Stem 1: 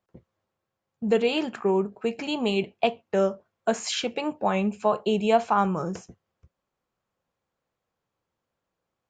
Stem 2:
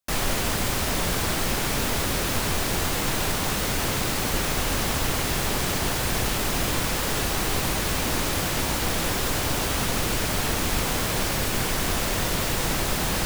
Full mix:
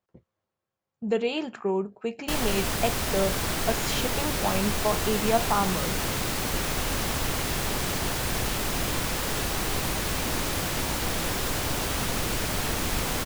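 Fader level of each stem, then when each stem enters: −3.5, −3.0 decibels; 0.00, 2.20 seconds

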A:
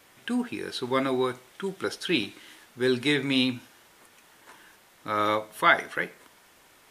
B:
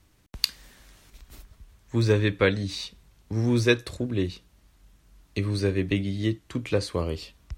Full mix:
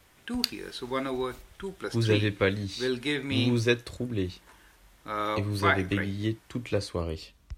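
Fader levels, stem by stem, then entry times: −5.0, −3.5 decibels; 0.00, 0.00 seconds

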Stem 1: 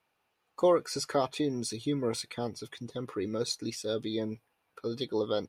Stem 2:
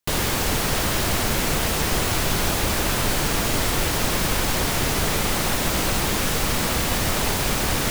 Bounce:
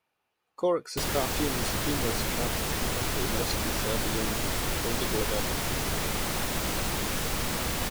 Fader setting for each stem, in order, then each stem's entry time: −2.0, −7.5 decibels; 0.00, 0.90 seconds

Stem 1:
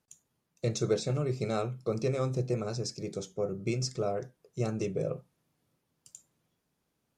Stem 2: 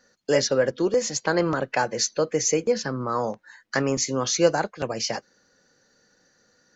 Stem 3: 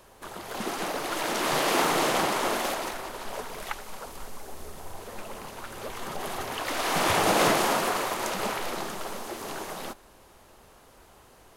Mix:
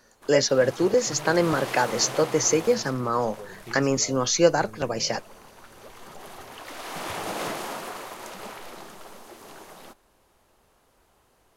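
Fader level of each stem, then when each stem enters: −11.0, +1.0, −9.0 decibels; 0.00, 0.00, 0.00 seconds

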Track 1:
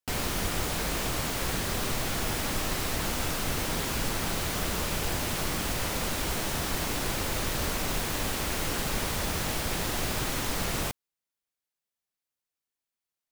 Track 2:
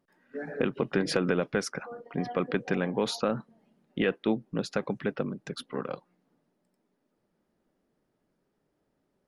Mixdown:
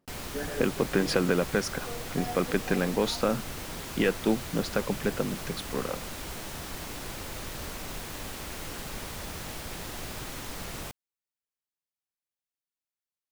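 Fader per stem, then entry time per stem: −8.0, +1.5 decibels; 0.00, 0.00 seconds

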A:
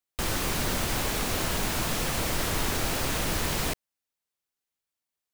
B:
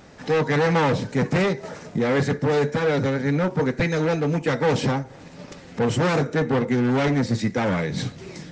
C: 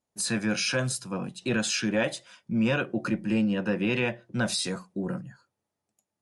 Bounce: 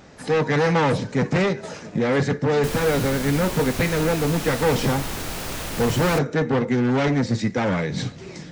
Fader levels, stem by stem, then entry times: −2.0, +0.5, −16.0 decibels; 2.45, 0.00, 0.00 seconds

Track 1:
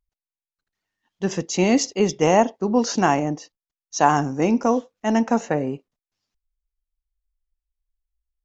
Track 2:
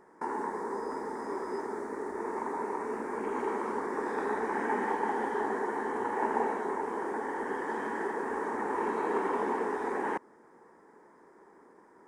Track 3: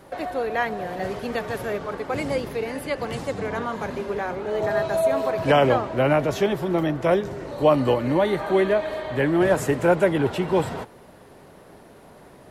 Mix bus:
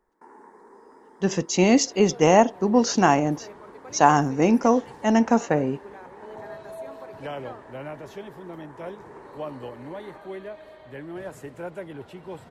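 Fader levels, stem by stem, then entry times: +0.5, −15.0, −17.0 decibels; 0.00, 0.00, 1.75 seconds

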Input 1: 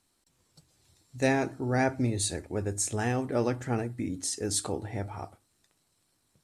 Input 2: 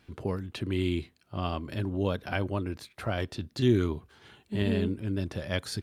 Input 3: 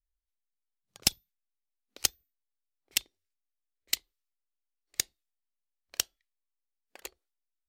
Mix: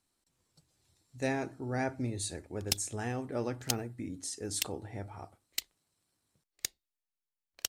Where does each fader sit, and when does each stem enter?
−7.0 dB, muted, −6.0 dB; 0.00 s, muted, 1.65 s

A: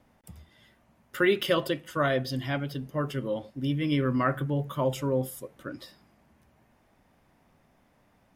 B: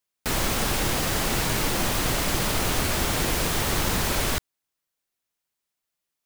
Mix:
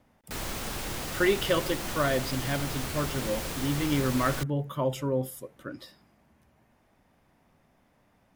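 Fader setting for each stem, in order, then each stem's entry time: −1.0, −10.0 decibels; 0.00, 0.05 seconds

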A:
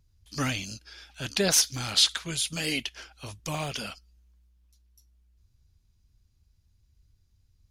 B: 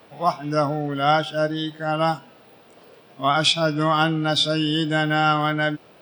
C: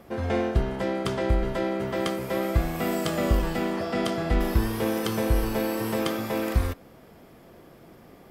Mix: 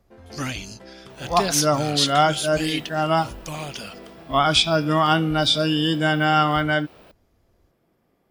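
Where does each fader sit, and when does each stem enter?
0.0, +1.0, −17.0 decibels; 0.00, 1.10, 0.00 seconds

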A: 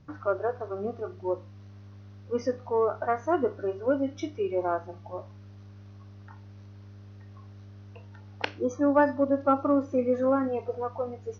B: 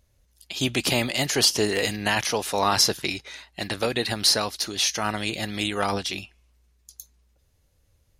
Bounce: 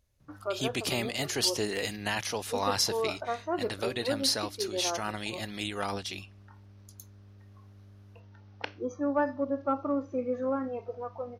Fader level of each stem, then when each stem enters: −6.0, −8.0 decibels; 0.20, 0.00 seconds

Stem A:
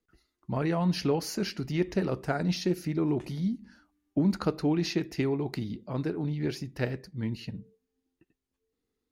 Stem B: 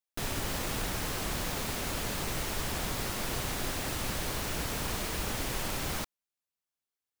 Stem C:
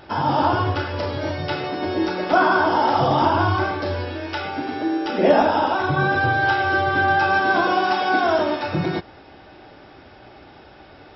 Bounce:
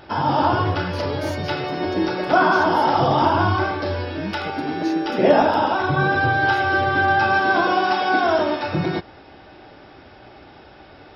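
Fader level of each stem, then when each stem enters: −5.5 dB, muted, +0.5 dB; 0.00 s, muted, 0.00 s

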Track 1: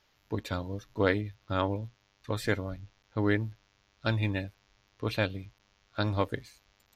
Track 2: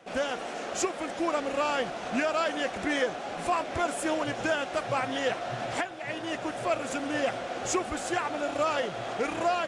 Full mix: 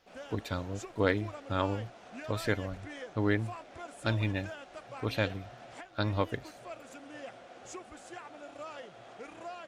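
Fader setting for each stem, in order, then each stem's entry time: −1.5, −16.5 decibels; 0.00, 0.00 seconds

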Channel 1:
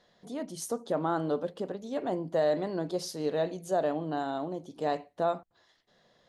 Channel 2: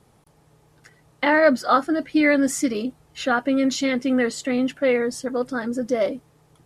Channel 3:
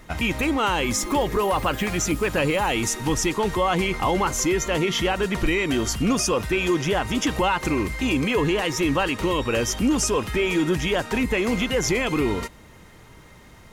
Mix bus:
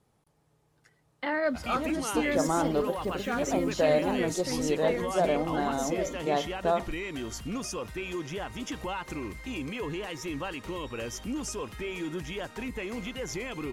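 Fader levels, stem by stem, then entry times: +2.0, −12.0, −13.0 decibels; 1.45, 0.00, 1.45 seconds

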